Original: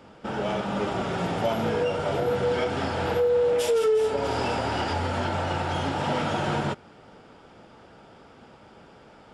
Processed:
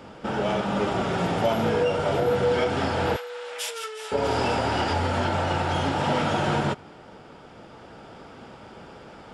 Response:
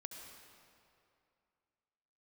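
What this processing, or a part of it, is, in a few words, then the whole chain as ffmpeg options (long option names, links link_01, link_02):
ducked reverb: -filter_complex "[0:a]asplit=3[link_01][link_02][link_03];[1:a]atrim=start_sample=2205[link_04];[link_02][link_04]afir=irnorm=-1:irlink=0[link_05];[link_03]apad=whole_len=411682[link_06];[link_05][link_06]sidechaincompress=threshold=-42dB:ratio=8:attack=16:release=1110,volume=1dB[link_07];[link_01][link_07]amix=inputs=2:normalize=0,asettb=1/sr,asplit=3[link_08][link_09][link_10];[link_08]atrim=end=3.164[link_11];[link_09]atrim=start=3.16:end=4.12,asetpts=PTS-STARTPTS,afade=type=in:duration=0.004:curve=qsin,afade=type=out:start_time=0.956:duration=0.004:curve=qsin,highpass=1400[link_12];[link_10]atrim=start=4.116[link_13];[link_11][link_12]acrossfade=duration=0.004:curve1=hsin:curve2=qsin[link_14];[link_14][link_13]acrossfade=duration=0.004:curve1=qsin:curve2=hsin,volume=2dB"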